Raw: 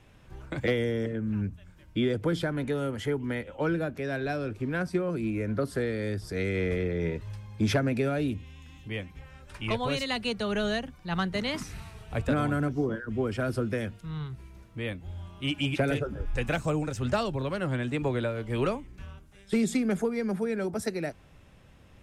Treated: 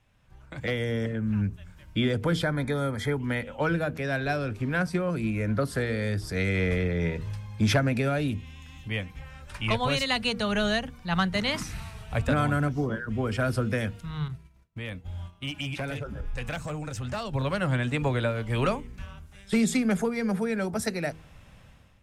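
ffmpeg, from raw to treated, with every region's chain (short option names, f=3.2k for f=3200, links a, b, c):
-filter_complex "[0:a]asettb=1/sr,asplit=3[a][b][c];[a]atrim=end=2.434[d];[b]atrim=start=2.43:end=3.16,asetpts=PTS-STARTPTS,afade=t=in:d=0.004:c=qsin,afade=t=out:st=0.726:d=0.004:c=qsin,asuperstop=centerf=2800:order=20:qfactor=4.5,equalizer=f=6.7k:w=3.9:g=-3.5[e];[c]atrim=start=3.156[f];[d][e]acrossfade=d=0.004:c1=hsin:c2=qsin[g];[g][f]acrossfade=d=0.004:c1=qsin:c2=hsin,asettb=1/sr,asplit=3[h][i][j];[h]atrim=end=14.284[k];[i]atrim=start=14.28:end=17.33,asetpts=PTS-STARTPTS,afade=t=in:d=0.004:c=qsin,afade=t=out:st=3.046:d=0.004:c=qsin,agate=range=-33dB:threshold=-38dB:ratio=3:release=100:detection=peak,asoftclip=type=hard:threshold=-22.5dB,acompressor=threshold=-37dB:ratio=2.5:attack=3.2:release=140:knee=1:detection=peak[l];[j]atrim=start=17.326[m];[k][l]acrossfade=d=0.004:c1=hsin:c2=qsin[n];[n][m]acrossfade=d=0.004:c1=qsin:c2=hsin,equalizer=f=360:w=1.6:g=-8,bandreject=f=79.42:t=h:w=4,bandreject=f=158.84:t=h:w=4,bandreject=f=238.26:t=h:w=4,bandreject=f=317.68:t=h:w=4,bandreject=f=397.1:t=h:w=4,bandreject=f=476.52:t=h:w=4,dynaudnorm=f=470:g=3:m=14.5dB,volume=-9dB"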